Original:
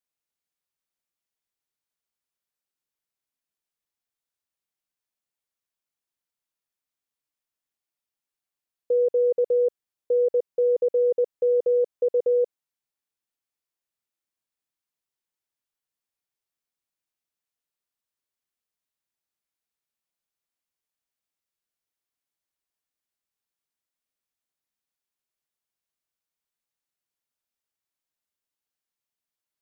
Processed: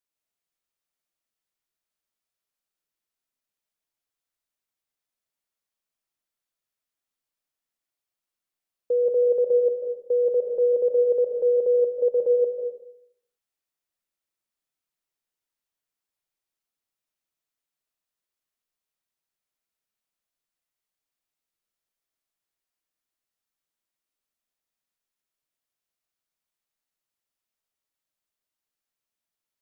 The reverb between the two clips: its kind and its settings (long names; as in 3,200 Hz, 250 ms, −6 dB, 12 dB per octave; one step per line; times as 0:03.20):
comb and all-pass reverb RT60 0.73 s, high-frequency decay 0.6×, pre-delay 105 ms, DRR 2 dB
level −1 dB